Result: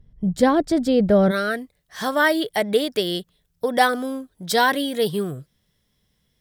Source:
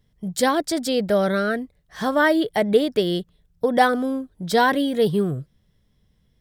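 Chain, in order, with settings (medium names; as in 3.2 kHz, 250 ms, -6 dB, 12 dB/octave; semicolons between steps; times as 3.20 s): tilt EQ -3 dB/octave, from 1.30 s +2 dB/octave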